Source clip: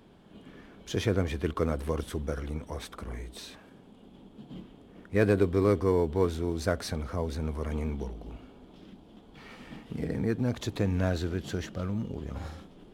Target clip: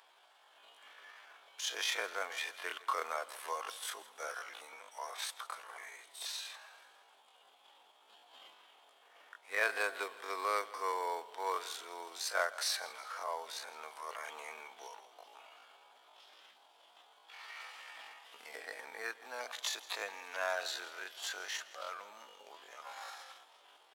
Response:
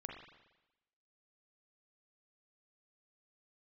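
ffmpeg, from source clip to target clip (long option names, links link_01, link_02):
-filter_complex "[0:a]highpass=frequency=770:width=0.5412,highpass=frequency=770:width=1.3066,highshelf=frequency=3500:gain=2.5,atempo=0.54,asplit=2[link_01][link_02];[link_02]aecho=0:1:164|328|492|656:0.112|0.055|0.0269|0.0132[link_03];[link_01][link_03]amix=inputs=2:normalize=0,volume=1.5dB"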